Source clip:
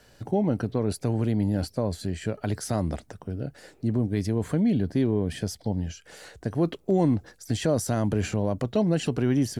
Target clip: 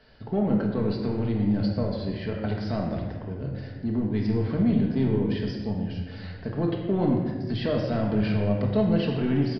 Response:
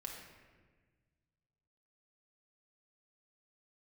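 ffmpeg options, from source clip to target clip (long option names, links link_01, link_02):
-filter_complex "[0:a]asplit=2[link_01][link_02];[link_02]asoftclip=type=tanh:threshold=-23.5dB,volume=-3.5dB[link_03];[link_01][link_03]amix=inputs=2:normalize=0[link_04];[1:a]atrim=start_sample=2205,asetrate=48510,aresample=44100[link_05];[link_04][link_05]afir=irnorm=-1:irlink=0,aresample=11025,aresample=44100"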